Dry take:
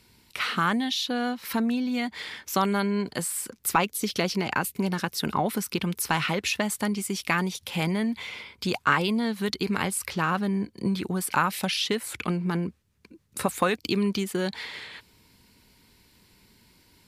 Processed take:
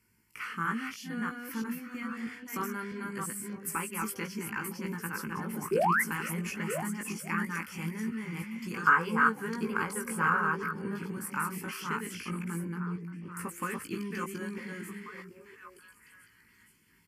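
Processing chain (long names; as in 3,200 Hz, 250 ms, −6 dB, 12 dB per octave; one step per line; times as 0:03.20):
delay that plays each chunk backwards 324 ms, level −2 dB
phaser with its sweep stopped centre 1,600 Hz, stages 4
sound drawn into the spectrogram rise, 0:05.71–0:06.02, 350–2,200 Hz −18 dBFS
on a send: echo through a band-pass that steps 479 ms, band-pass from 200 Hz, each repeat 1.4 octaves, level −5 dB
on the sum: gain on a spectral selection 0:08.77–0:11.11, 390–1,700 Hz +9 dB
low-shelf EQ 66 Hz −11 dB
double-tracking delay 18 ms −4.5 dB
level −9 dB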